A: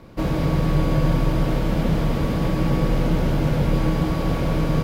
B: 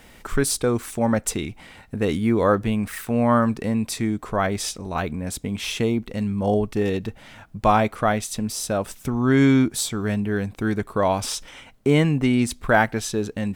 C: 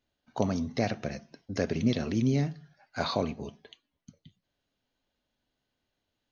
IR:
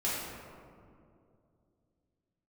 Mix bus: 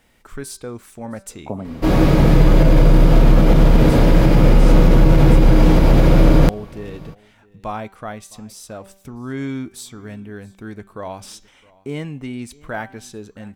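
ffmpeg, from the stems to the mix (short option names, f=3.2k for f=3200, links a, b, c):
-filter_complex "[0:a]adelay=1650,volume=2.5dB,asplit=3[a][b][c];[b]volume=-3dB[d];[c]volume=-18.5dB[e];[1:a]bandreject=f=194.2:t=h:w=4,bandreject=f=388.4:t=h:w=4,bandreject=f=582.6:t=h:w=4,bandreject=f=776.8:t=h:w=4,bandreject=f=971:t=h:w=4,bandreject=f=1.1652k:t=h:w=4,bandreject=f=1.3594k:t=h:w=4,bandreject=f=1.5536k:t=h:w=4,bandreject=f=1.7478k:t=h:w=4,bandreject=f=1.942k:t=h:w=4,bandreject=f=2.1362k:t=h:w=4,bandreject=f=2.3304k:t=h:w=4,bandreject=f=2.5246k:t=h:w=4,bandreject=f=2.7188k:t=h:w=4,bandreject=f=2.913k:t=h:w=4,bandreject=f=3.1072k:t=h:w=4,bandreject=f=3.3014k:t=h:w=4,bandreject=f=3.4956k:t=h:w=4,bandreject=f=3.6898k:t=h:w=4,bandreject=f=3.884k:t=h:w=4,bandreject=f=4.0782k:t=h:w=4,bandreject=f=4.2724k:t=h:w=4,bandreject=f=4.4666k:t=h:w=4,bandreject=f=4.6608k:t=h:w=4,bandreject=f=4.855k:t=h:w=4,bandreject=f=5.0492k:t=h:w=4,bandreject=f=5.2434k:t=h:w=4,bandreject=f=5.4376k:t=h:w=4,bandreject=f=5.6318k:t=h:w=4,bandreject=f=5.826k:t=h:w=4,bandreject=f=6.0202k:t=h:w=4,bandreject=f=6.2144k:t=h:w=4,bandreject=f=6.4086k:t=h:w=4,bandreject=f=6.6028k:t=h:w=4,bandreject=f=6.797k:t=h:w=4,bandreject=f=6.9912k:t=h:w=4,bandreject=f=7.1854k:t=h:w=4,bandreject=f=7.3796k:t=h:w=4,bandreject=f=7.5738k:t=h:w=4,volume=-10dB,asplit=2[f][g];[g]volume=-23.5dB[h];[2:a]lowpass=f=1.3k:w=0.5412,lowpass=f=1.3k:w=1.3066,adelay=1100,volume=0dB[i];[3:a]atrim=start_sample=2205[j];[d][j]afir=irnorm=-1:irlink=0[k];[e][h]amix=inputs=2:normalize=0,aecho=0:1:663:1[l];[a][f][i][k][l]amix=inputs=5:normalize=0,alimiter=limit=-2.5dB:level=0:latency=1:release=61"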